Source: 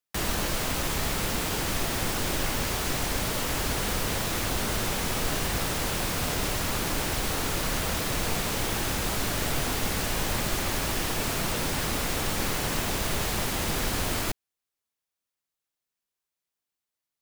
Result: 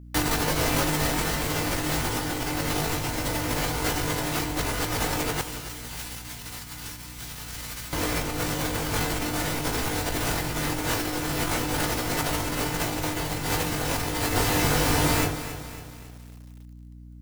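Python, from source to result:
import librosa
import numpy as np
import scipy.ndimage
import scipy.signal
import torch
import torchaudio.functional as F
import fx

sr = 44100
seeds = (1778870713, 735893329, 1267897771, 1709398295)

y = fx.low_shelf(x, sr, hz=93.0, db=-2.5)
y = fx.doubler(y, sr, ms=20.0, db=-3)
y = y + 10.0 ** (-4.0 / 20.0) * np.pad(y, (int(922 * sr / 1000.0), 0))[:len(y)]
y = fx.rev_fdn(y, sr, rt60_s=0.51, lf_ratio=1.1, hf_ratio=0.45, size_ms=20.0, drr_db=-3.5)
y = fx.over_compress(y, sr, threshold_db=-24.0, ratio=-0.5)
y = fx.tone_stack(y, sr, knobs='5-5-5', at=(5.41, 7.93))
y = fx.add_hum(y, sr, base_hz=60, snr_db=16)
y = fx.echo_crushed(y, sr, ms=275, feedback_pct=55, bits=7, wet_db=-11.5)
y = y * librosa.db_to_amplitude(-1.5)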